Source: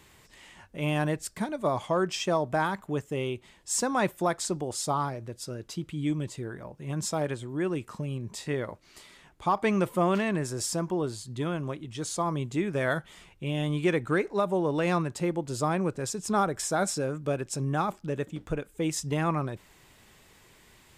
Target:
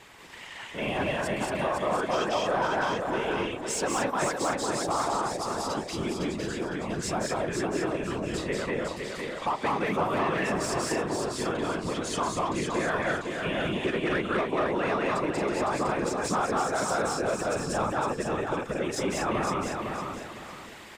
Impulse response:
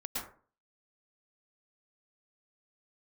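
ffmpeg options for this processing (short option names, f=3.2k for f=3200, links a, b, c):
-filter_complex "[0:a]asplit=2[a][b];[b]aecho=0:1:186.6|224.5:0.891|0.708[c];[a][c]amix=inputs=2:normalize=0,afftfilt=real='hypot(re,im)*cos(2*PI*random(0))':imag='hypot(re,im)*sin(2*PI*random(1))':win_size=512:overlap=0.75,asplit=2[d][e];[e]highpass=f=720:p=1,volume=14dB,asoftclip=type=tanh:threshold=-16.5dB[f];[d][f]amix=inputs=2:normalize=0,lowpass=f=2.6k:p=1,volume=-6dB,acompressor=threshold=-40dB:ratio=2,asplit=2[g][h];[h]aecho=0:1:508|1016|1524|2032:0.562|0.174|0.054|0.0168[i];[g][i]amix=inputs=2:normalize=0,volume=7.5dB"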